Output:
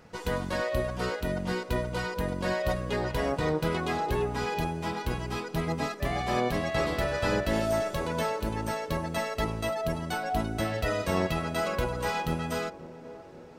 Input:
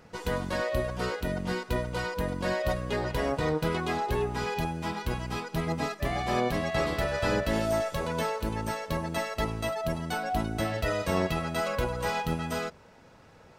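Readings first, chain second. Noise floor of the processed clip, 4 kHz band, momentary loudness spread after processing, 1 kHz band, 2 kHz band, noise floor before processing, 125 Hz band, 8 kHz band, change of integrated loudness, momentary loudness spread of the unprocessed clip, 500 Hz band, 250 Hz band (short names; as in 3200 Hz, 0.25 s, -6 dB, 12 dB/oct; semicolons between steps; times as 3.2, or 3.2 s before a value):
-45 dBFS, 0.0 dB, 5 LU, 0.0 dB, 0.0 dB, -54 dBFS, 0.0 dB, 0.0 dB, 0.0 dB, 5 LU, +0.5 dB, 0.0 dB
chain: on a send: narrowing echo 0.53 s, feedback 75%, band-pass 380 Hz, level -13.5 dB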